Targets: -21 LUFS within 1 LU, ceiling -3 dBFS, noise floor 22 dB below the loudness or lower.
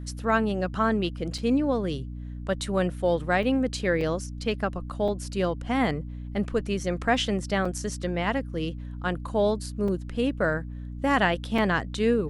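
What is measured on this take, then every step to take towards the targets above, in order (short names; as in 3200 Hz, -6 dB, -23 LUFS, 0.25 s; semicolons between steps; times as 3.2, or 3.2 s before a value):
dropouts 7; longest dropout 3.8 ms; hum 60 Hz; harmonics up to 300 Hz; hum level -34 dBFS; loudness -27.0 LUFS; peak -9.5 dBFS; loudness target -21.0 LUFS
-> interpolate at 1.38/3.43/4.01/5.08/7.65/9.88/11.58, 3.8 ms; de-hum 60 Hz, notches 5; gain +6 dB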